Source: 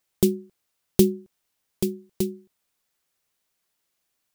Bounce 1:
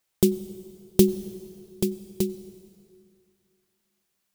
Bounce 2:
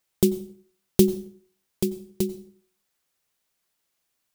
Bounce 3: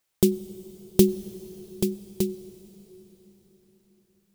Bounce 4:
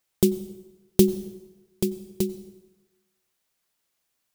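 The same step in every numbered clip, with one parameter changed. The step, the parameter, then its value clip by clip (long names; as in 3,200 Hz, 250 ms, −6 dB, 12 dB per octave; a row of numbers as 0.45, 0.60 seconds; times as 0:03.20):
dense smooth reverb, RT60: 2.5, 0.52, 5.3, 1.1 seconds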